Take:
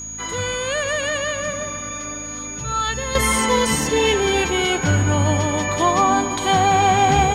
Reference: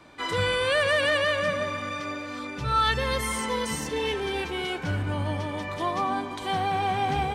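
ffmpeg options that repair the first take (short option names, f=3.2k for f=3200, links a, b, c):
-af "bandreject=f=54.1:t=h:w=4,bandreject=f=108.2:t=h:w=4,bandreject=f=162.3:t=h:w=4,bandreject=f=216.4:t=h:w=4,bandreject=f=270.5:t=h:w=4,bandreject=f=6.7k:w=30,agate=range=-21dB:threshold=-22dB,asetnsamples=n=441:p=0,asendcmd='3.15 volume volume -10.5dB',volume=0dB"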